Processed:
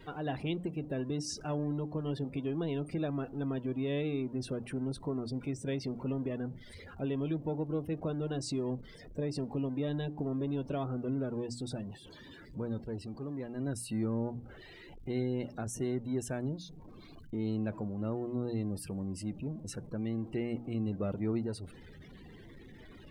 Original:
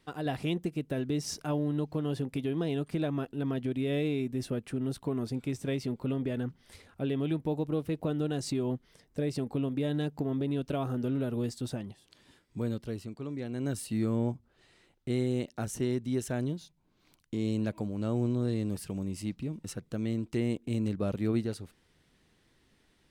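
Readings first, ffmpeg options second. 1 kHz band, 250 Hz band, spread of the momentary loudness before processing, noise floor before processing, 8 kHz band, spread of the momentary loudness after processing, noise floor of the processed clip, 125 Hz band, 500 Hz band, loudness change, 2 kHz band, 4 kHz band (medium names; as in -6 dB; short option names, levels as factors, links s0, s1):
-2.0 dB, -3.5 dB, 8 LU, -69 dBFS, -2.0 dB, 15 LU, -52 dBFS, -3.5 dB, -2.5 dB, -3.5 dB, -3.5 dB, -3.0 dB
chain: -af "aeval=exprs='val(0)+0.5*0.0119*sgn(val(0))':c=same,bandreject=f=60:t=h:w=6,bandreject=f=120:t=h:w=6,bandreject=f=180:t=h:w=6,bandreject=f=240:t=h:w=6,bandreject=f=300:t=h:w=6,afftdn=nr=26:nf=-44,volume=0.631"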